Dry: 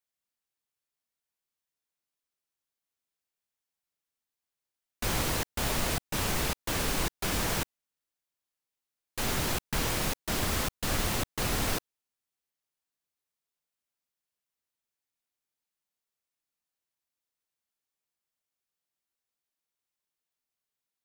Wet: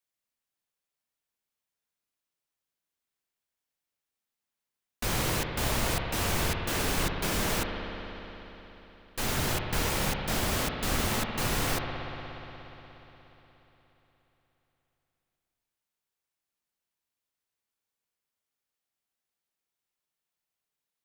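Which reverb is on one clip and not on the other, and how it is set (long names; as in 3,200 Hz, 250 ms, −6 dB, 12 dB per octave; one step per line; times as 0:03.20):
spring reverb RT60 3.9 s, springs 59 ms, chirp 45 ms, DRR 2.5 dB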